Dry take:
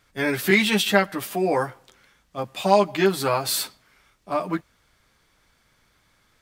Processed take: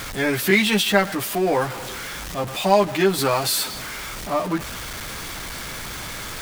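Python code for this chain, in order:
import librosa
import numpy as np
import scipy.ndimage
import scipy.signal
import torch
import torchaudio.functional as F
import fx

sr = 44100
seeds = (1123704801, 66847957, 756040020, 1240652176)

y = x + 0.5 * 10.0 ** (-26.5 / 20.0) * np.sign(x)
y = fx.band_squash(y, sr, depth_pct=40, at=(3.18, 3.64))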